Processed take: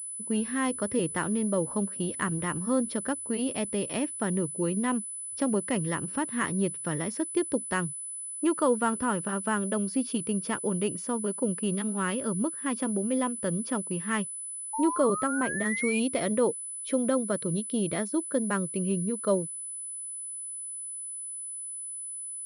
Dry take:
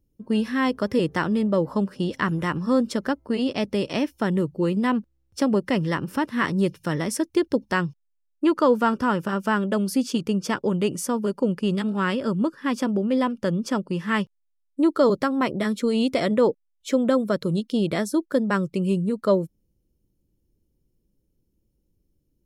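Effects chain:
0:14.73–0:16.00: sound drawn into the spectrogram rise 860–2,500 Hz −27 dBFS
0:14.92–0:15.66: high-shelf EQ 3,800 Hz −12 dB
switching amplifier with a slow clock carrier 10,000 Hz
level −6 dB

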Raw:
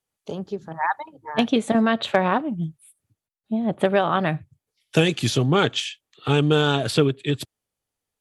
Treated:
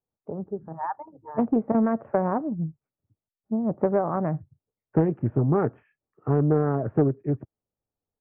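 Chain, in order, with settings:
Gaussian smoothing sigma 8 samples
highs frequency-modulated by the lows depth 0.33 ms
level −1.5 dB

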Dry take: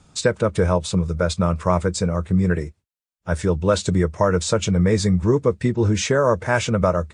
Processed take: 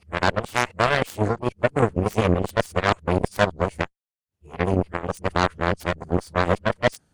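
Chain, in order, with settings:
played backwards from end to start
formants moved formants +4 semitones
harmonic generator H 7 −15 dB, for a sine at −3 dBFS

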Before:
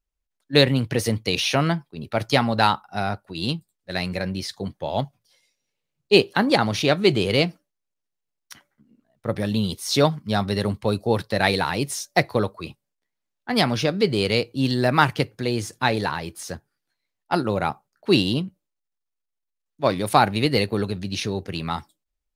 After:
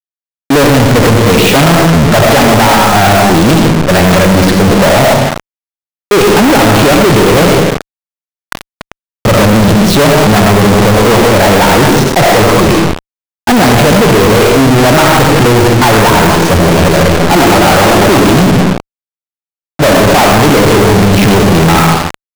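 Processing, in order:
0:16.20–0:18.20: feedback delay that plays each chunk backwards 247 ms, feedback 53%, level −1 dB
downward compressor 5 to 1, threshold −27 dBFS, peak gain reduction 15.5 dB
low-pass filter 1,300 Hz 12 dB per octave
comb and all-pass reverb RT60 0.86 s, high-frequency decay 0.8×, pre-delay 45 ms, DRR 3 dB
fuzz pedal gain 51 dB, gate −46 dBFS
leveller curve on the samples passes 5
level +5.5 dB

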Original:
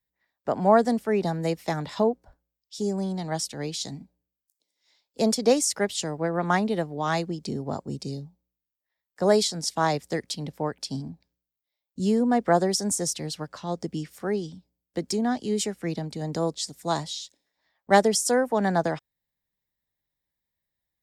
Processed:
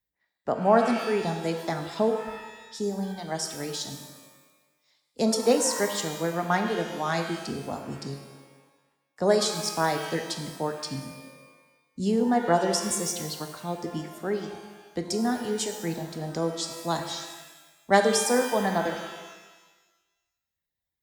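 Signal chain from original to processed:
reverb reduction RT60 1.2 s
reverb with rising layers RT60 1.2 s, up +12 semitones, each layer −8 dB, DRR 5 dB
level −1.5 dB

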